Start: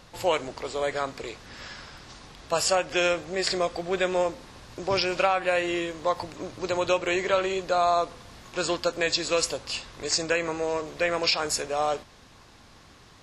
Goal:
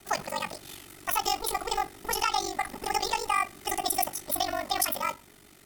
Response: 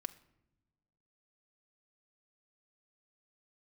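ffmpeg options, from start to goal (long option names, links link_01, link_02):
-filter_complex "[0:a]highshelf=frequency=4600:gain=5[link_01];[1:a]atrim=start_sample=2205[link_02];[link_01][link_02]afir=irnorm=-1:irlink=0,asetrate=103194,aresample=44100,aeval=exprs='val(0)*sin(2*PI*24*n/s)':channel_layout=same,afreqshift=-440,asplit=2[link_03][link_04];[link_04]asoftclip=type=tanh:threshold=-24dB,volume=-11dB[link_05];[link_03][link_05]amix=inputs=2:normalize=0"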